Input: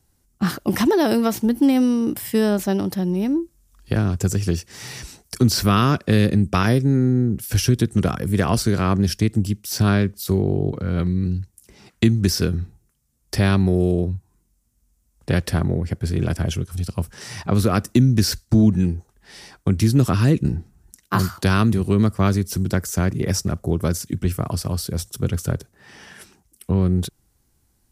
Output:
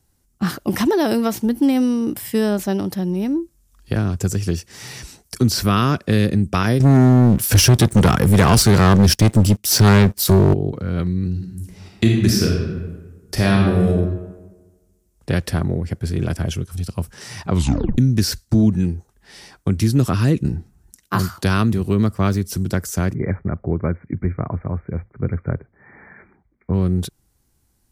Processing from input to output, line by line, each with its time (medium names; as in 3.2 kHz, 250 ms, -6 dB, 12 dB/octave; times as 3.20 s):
6.80–10.54 s: waveshaping leveller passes 3
11.31–13.88 s: reverb throw, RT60 1.3 s, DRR -1 dB
17.51 s: tape stop 0.47 s
21.62–22.45 s: decimation joined by straight lines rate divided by 2×
23.14–26.74 s: brick-wall FIR low-pass 2.4 kHz